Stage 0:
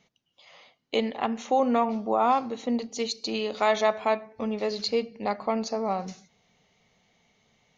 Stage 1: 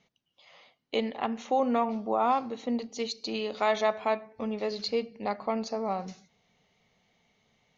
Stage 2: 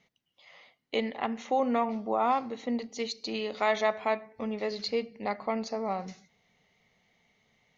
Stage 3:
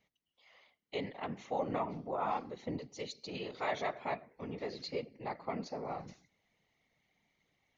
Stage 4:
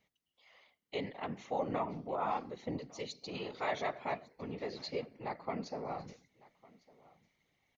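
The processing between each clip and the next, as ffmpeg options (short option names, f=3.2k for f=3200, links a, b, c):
-af "lowpass=6.3k,volume=-3dB"
-af "equalizer=f=2k:w=5.5:g=7,volume=-1dB"
-af "afftfilt=real='hypot(re,im)*cos(2*PI*random(0))':imag='hypot(re,im)*sin(2*PI*random(1))':win_size=512:overlap=0.75,volume=-2.5dB"
-af "aecho=1:1:1154:0.0708"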